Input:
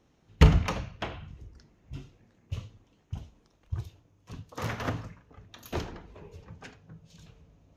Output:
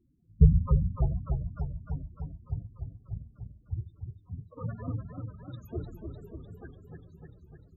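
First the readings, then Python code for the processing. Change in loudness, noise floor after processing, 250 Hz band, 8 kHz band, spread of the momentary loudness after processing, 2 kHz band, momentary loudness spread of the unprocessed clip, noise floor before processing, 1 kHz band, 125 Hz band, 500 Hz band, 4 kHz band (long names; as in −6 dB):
−1.0 dB, −62 dBFS, −0.5 dB, below −25 dB, 22 LU, below −20 dB, 26 LU, −67 dBFS, −10.5 dB, +1.5 dB, −6.0 dB, below −25 dB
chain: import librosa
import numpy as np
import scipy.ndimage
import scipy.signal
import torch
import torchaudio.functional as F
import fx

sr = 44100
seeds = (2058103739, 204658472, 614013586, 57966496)

y = fx.spec_topn(x, sr, count=8)
y = fx.echo_warbled(y, sr, ms=298, feedback_pct=69, rate_hz=2.8, cents=130, wet_db=-6.0)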